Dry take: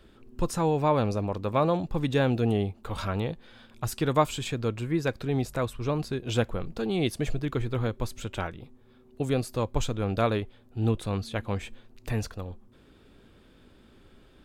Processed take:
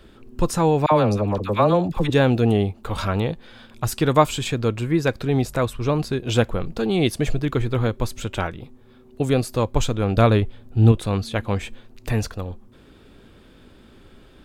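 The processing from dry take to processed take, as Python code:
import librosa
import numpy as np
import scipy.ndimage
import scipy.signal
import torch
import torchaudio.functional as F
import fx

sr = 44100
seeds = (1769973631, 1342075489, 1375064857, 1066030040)

y = fx.dispersion(x, sr, late='lows', ms=58.0, hz=910.0, at=(0.86, 2.1))
y = fx.low_shelf(y, sr, hz=160.0, db=9.5, at=(10.16, 10.92))
y = y * 10.0 ** (7.0 / 20.0)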